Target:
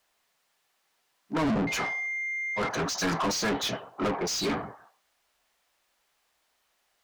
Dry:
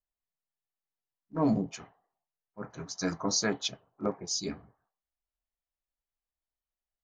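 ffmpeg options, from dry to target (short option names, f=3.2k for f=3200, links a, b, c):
-filter_complex "[0:a]acrossover=split=260[a][b];[b]acompressor=threshold=-34dB:ratio=4[c];[a][c]amix=inputs=2:normalize=0,asettb=1/sr,asplit=3[d][e][f];[d]atrim=end=1.674[g];[e]atrim=start=1.67:end=2.69,asetpts=PTS-STARTPTS,afade=t=in:d=0.004:c=qsin,afade=t=out:st=1.016:d=0.004:c=qsin,aeval=exprs='val(0)+0.002*sin(2*PI*2100*n/s)':c=same[h];[f]atrim=start=2.686[i];[g][h]acrossfade=d=0.004:c1=hsin:c2=qsin[j];[j][i]acrossfade=d=0.004:c1=qsin:c2=hsin,asplit=2[k][l];[l]highpass=f=720:p=1,volume=34dB,asoftclip=type=tanh:threshold=-20dB[m];[k][m]amix=inputs=2:normalize=0,lowpass=f=3.7k:p=1,volume=-6dB"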